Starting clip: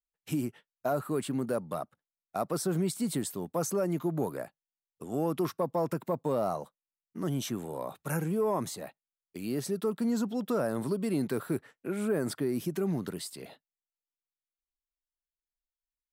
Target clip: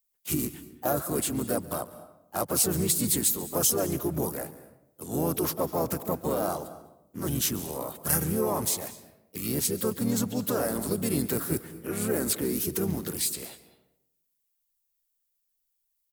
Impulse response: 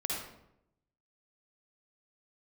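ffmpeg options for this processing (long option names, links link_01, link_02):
-filter_complex "[0:a]asplit=4[link_01][link_02][link_03][link_04];[link_02]asetrate=22050,aresample=44100,atempo=2,volume=-7dB[link_05];[link_03]asetrate=37084,aresample=44100,atempo=1.18921,volume=-6dB[link_06];[link_04]asetrate=52444,aresample=44100,atempo=0.840896,volume=-8dB[link_07];[link_01][link_05][link_06][link_07]amix=inputs=4:normalize=0,aemphasis=mode=production:type=75fm,asplit=2[link_08][link_09];[1:a]atrim=start_sample=2205,adelay=140[link_10];[link_09][link_10]afir=irnorm=-1:irlink=0,volume=-19dB[link_11];[link_08][link_11]amix=inputs=2:normalize=0"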